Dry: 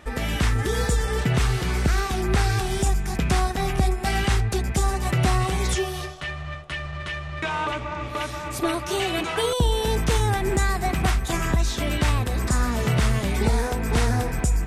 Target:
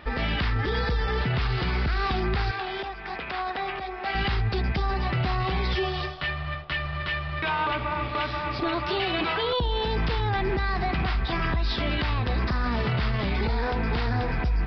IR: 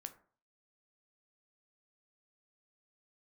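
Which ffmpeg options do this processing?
-filter_complex "[0:a]asplit=2[s0][s1];[s1]lowshelf=f=560:t=q:w=1.5:g=-11[s2];[1:a]atrim=start_sample=2205[s3];[s2][s3]afir=irnorm=-1:irlink=0,volume=0.668[s4];[s0][s4]amix=inputs=2:normalize=0,aresample=11025,aresample=44100,alimiter=limit=0.126:level=0:latency=1:release=22,asettb=1/sr,asplit=3[s5][s6][s7];[s5]atrim=end=2.514[s8];[s6]atrim=start=2.51:end=4.15,asetpts=PTS-STARTPTS,afade=t=in:d=0.004:c=qsin,afade=t=out:st=1.636:d=0.004:c=qsin,acrossover=split=350 4100:gain=0.1 1 0.2[s9][s10][s11];[s9][s10][s11]amix=inputs=3:normalize=0[s12];[s7]atrim=start=4.146[s13];[s8][s12]acrossfade=d=0.004:c1=hsin:c2=qsin[s14];[s14][s13]acrossfade=d=0.004:c1=qsin:c2=hsin"

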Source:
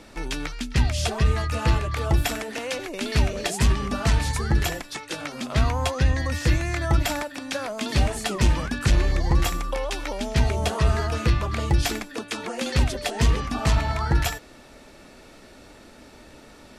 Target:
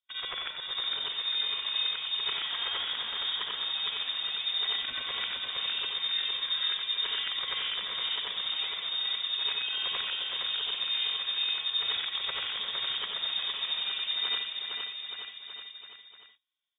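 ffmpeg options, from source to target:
-filter_complex "[0:a]afftfilt=real='re':imag='-im':win_size=8192:overlap=0.75,agate=range=0.00708:threshold=0.00794:ratio=16:detection=peak,areverse,acompressor=threshold=0.02:ratio=8,areverse,afreqshift=75,asplit=2[s0][s1];[s1]aecho=0:1:460|874|1247|1582|1884:0.631|0.398|0.251|0.158|0.1[s2];[s0][s2]amix=inputs=2:normalize=0,acontrast=81,lowpass=f=3200:t=q:w=0.5098,lowpass=f=3200:t=q:w=0.6013,lowpass=f=3200:t=q:w=0.9,lowpass=f=3200:t=q:w=2.563,afreqshift=-3800,volume=0.631"

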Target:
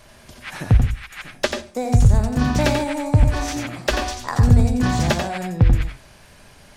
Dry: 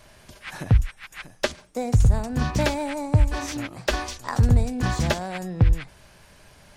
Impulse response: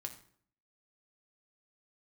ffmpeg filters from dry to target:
-filter_complex "[0:a]asplit=2[s0][s1];[1:a]atrim=start_sample=2205,asetrate=88200,aresample=44100,adelay=88[s2];[s1][s2]afir=irnorm=-1:irlink=0,volume=1.5[s3];[s0][s3]amix=inputs=2:normalize=0,volume=1.41"

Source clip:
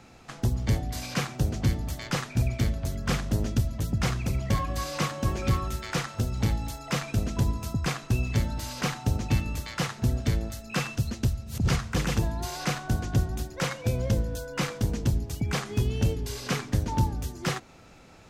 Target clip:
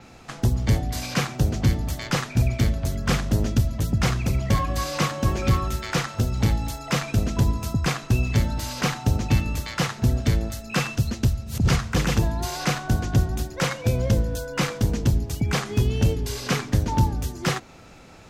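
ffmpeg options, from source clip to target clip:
-af "adynamicequalizer=threshold=0.00141:dfrequency=9100:dqfactor=2.5:tfrequency=9100:tqfactor=2.5:attack=5:release=100:ratio=0.375:range=1.5:mode=cutabove:tftype=bell,acontrast=65,volume=0.841"

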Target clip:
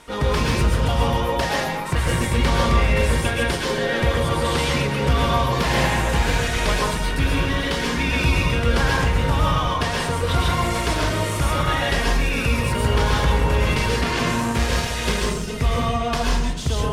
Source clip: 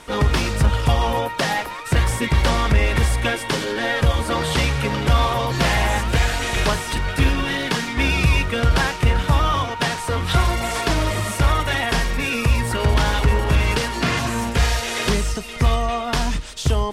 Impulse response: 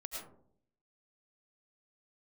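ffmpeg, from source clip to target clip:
-filter_complex "[1:a]atrim=start_sample=2205,asetrate=35721,aresample=44100[s0];[0:a][s0]afir=irnorm=-1:irlink=0,asettb=1/sr,asplit=3[s1][s2][s3];[s1]atrim=end=14.424[s4];[s2]atrim=start=14.42:end=15.48,asetpts=PTS-STARTPTS,afade=t=in:d=0.004:c=qsin,afade=t=out:st=1.056:d=0.004:c=qsin,aeval=exprs='0.447*(cos(1*acos(clip(val(0)/0.447,-1,1)))-cos(1*PI/2))+0.0178*(cos(7*acos(clip(val(0)/0.447,-1,1)))-cos(7*PI/2))':c=same[s5];[s3]atrim=start=15.476[s6];[s4][s5]acrossfade=d=0.004:c1=hsin:c2=qsin[s7];[s7][s6]acrossfade=d=0.004:c1=qsin:c2=hsin"

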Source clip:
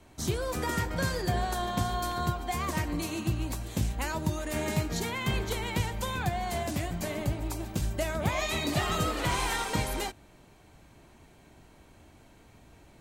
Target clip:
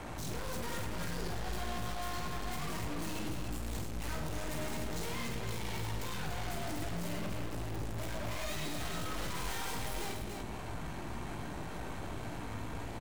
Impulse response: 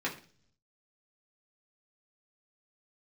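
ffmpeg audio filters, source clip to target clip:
-filter_complex "[0:a]asettb=1/sr,asplit=3[s0][s1][s2];[s0]atrim=end=7.254[s3];[s1]atrim=start=7.25:end=7.97,asetpts=PTS-STARTPTS,afade=t=in:d=0.004:c=qsin,afade=t=out:st=0.716:d=0.004:c=qsin,acrossover=split=2800[s4][s5];[s5]acompressor=threshold=0.00501:ratio=4:attack=1:release=60[s6];[s4][s6]amix=inputs=2:normalize=0[s7];[s2]atrim=start=7.966[s8];[s3][s7]acrossfade=d=0.004:c1=hsin:c2=qsin[s9];[s9][s8]acrossfade=d=0.004:c1=qsin:c2=hsin,equalizer=f=140:t=o:w=2.6:g=6,acrossover=split=840|1400[s10][s11][s12];[s11]acompressor=mode=upward:threshold=0.00282:ratio=2.5[s13];[s10][s13][s12]amix=inputs=3:normalize=0,alimiter=level_in=1.41:limit=0.0631:level=0:latency=1:release=130,volume=0.708,flanger=delay=17:depth=2.7:speed=1.7,aeval=exprs='(tanh(708*val(0)+0.6)-tanh(0.6))/708':c=same,aecho=1:1:47|103|290:0.473|0.355|0.501,volume=6.68"

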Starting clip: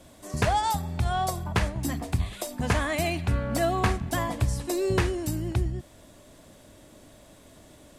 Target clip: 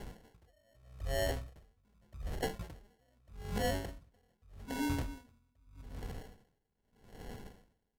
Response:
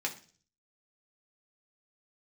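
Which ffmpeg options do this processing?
-af "acrusher=samples=27:mix=1:aa=0.000001,asoftclip=type=tanh:threshold=0.188,lowshelf=f=97:g=7.5,bandreject=f=50:t=h:w=6,bandreject=f=100:t=h:w=6,bandreject=f=150:t=h:w=6,bandreject=f=200:t=h:w=6,bandreject=f=250:t=h:w=6,bandreject=f=300:t=h:w=6,bandreject=f=350:t=h:w=6,bandreject=f=400:t=h:w=6,bandreject=f=450:t=h:w=6,bandreject=f=500:t=h:w=6,aecho=1:1:191|382|573:0.1|0.039|0.0152,asetrate=33038,aresample=44100,atempo=1.33484,areverse,acompressor=threshold=0.0158:ratio=6,areverse,aeval=exprs='val(0)*pow(10,-39*(0.5-0.5*cos(2*PI*0.82*n/s))/20)':c=same,volume=1.88"

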